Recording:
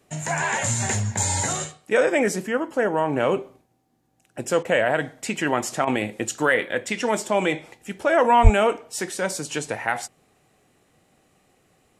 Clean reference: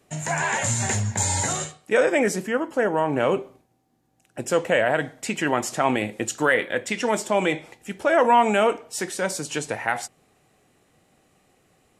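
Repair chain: de-plosive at 8.43 s; interpolate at 4.63/5.85 s, 20 ms

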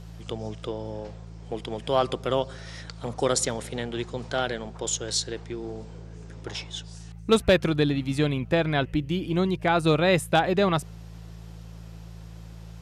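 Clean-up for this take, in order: clip repair -10.5 dBFS; de-hum 55.4 Hz, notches 3

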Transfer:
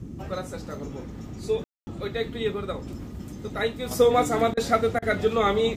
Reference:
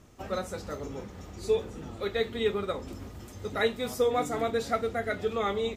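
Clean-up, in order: room tone fill 1.64–1.87 s; interpolate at 4.54/4.99 s, 31 ms; noise print and reduce 6 dB; trim 0 dB, from 3.91 s -7 dB

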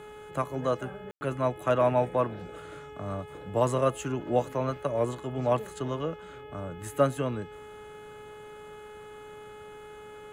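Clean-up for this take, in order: de-hum 422.6 Hz, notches 8; room tone fill 1.11–1.21 s

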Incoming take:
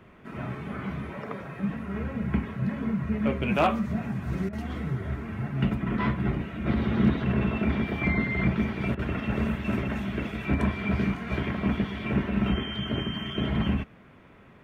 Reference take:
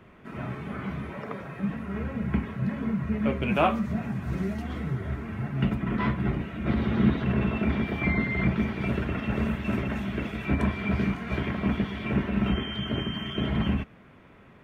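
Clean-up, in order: clip repair -13.5 dBFS; interpolate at 4.49/8.95 s, 38 ms

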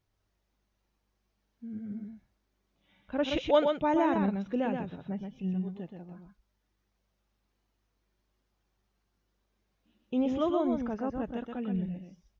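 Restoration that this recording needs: inverse comb 125 ms -5 dB

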